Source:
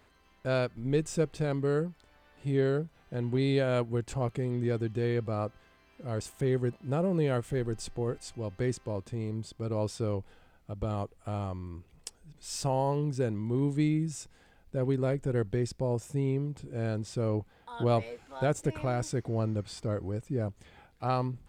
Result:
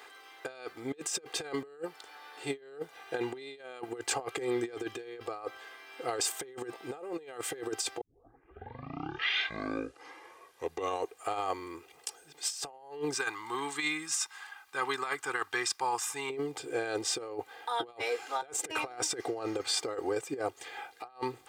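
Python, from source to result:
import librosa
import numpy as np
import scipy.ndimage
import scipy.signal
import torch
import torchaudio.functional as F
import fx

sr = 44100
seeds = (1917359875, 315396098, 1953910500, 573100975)

y = fx.low_shelf_res(x, sr, hz=760.0, db=-11.0, q=3.0, at=(13.14, 16.3))
y = fx.edit(y, sr, fx.tape_start(start_s=8.01, length_s=3.31), tone=tone)
y = scipy.signal.sosfilt(scipy.signal.butter(2, 590.0, 'highpass', fs=sr, output='sos'), y)
y = y + 0.8 * np.pad(y, (int(2.5 * sr / 1000.0), 0))[:len(y)]
y = fx.over_compress(y, sr, threshold_db=-41.0, ratio=-0.5)
y = y * 10.0 ** (6.5 / 20.0)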